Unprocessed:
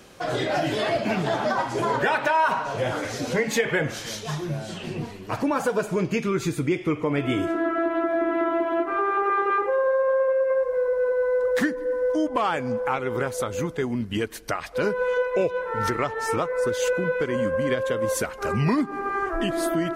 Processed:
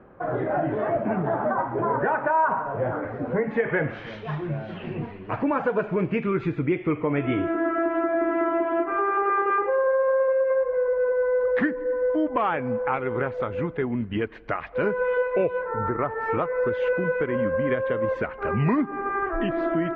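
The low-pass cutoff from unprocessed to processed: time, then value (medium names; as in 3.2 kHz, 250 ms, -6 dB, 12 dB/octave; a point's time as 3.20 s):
low-pass 24 dB/octave
3.36 s 1.5 kHz
4.03 s 2.5 kHz
15.58 s 2.5 kHz
15.82 s 1.3 kHz
16.31 s 2.4 kHz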